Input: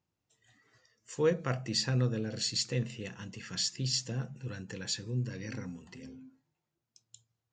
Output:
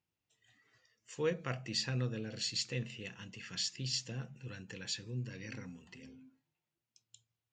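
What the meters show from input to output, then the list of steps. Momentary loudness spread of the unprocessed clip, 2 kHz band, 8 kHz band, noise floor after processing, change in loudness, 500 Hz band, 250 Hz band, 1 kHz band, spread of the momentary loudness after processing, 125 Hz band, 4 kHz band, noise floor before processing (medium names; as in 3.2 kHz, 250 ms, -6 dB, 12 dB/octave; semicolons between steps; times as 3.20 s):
16 LU, -2.0 dB, -5.5 dB, under -85 dBFS, -5.0 dB, -6.5 dB, -6.5 dB, -5.5 dB, 15 LU, -6.5 dB, -3.5 dB, under -85 dBFS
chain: peaking EQ 2.7 kHz +7.5 dB 1.1 oct; trim -6.5 dB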